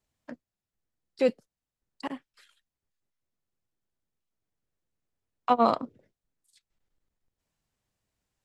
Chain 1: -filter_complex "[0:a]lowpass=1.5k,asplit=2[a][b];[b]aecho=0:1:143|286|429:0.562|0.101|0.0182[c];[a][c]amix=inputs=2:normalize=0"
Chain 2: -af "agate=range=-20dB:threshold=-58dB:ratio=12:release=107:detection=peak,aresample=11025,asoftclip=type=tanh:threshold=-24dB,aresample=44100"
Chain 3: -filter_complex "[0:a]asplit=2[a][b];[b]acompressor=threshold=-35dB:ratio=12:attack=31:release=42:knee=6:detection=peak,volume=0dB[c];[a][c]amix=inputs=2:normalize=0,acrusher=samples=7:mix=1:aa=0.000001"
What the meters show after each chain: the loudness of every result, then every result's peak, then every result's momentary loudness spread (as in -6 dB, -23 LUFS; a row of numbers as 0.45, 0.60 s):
-28.0, -35.0, -26.0 LUFS; -8.0, -22.5, -7.5 dBFS; 22, 18, 21 LU